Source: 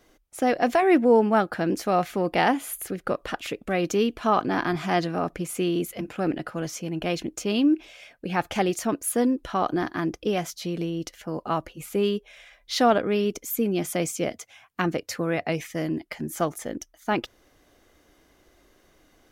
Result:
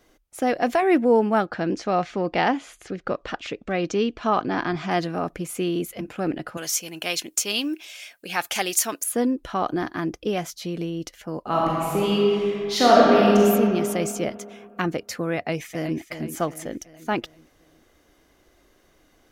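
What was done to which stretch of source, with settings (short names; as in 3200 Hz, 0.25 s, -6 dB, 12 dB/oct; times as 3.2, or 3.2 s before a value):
1.45–4.91 LPF 6500 Hz 24 dB/oct
6.57–9.04 tilt +4.5 dB/oct
11.46–13.42 reverb throw, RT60 2.6 s, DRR -6 dB
15.36–16.07 echo throw 0.37 s, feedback 50%, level -10 dB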